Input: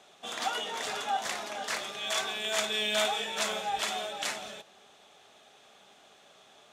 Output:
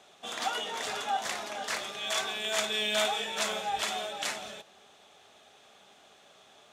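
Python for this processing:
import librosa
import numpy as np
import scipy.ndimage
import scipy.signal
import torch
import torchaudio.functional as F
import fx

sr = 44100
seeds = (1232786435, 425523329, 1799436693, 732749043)

y = fx.peak_eq(x, sr, hz=86.0, db=6.5, octaves=0.27)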